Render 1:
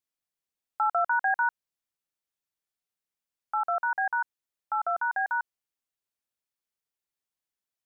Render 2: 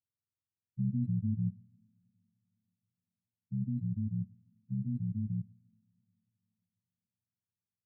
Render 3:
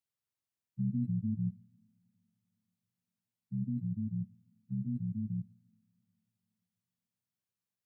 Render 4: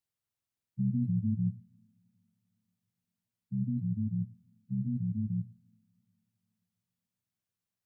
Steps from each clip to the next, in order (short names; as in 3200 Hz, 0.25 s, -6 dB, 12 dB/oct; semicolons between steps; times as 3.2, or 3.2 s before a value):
spectrum mirrored in octaves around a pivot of 410 Hz; two-slope reverb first 0.82 s, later 3.5 s, from -21 dB, DRR 17 dB; gain -6.5 dB
HPF 130 Hz 12 dB/oct; gain +1 dB
low shelf 150 Hz +8 dB; notches 60/120 Hz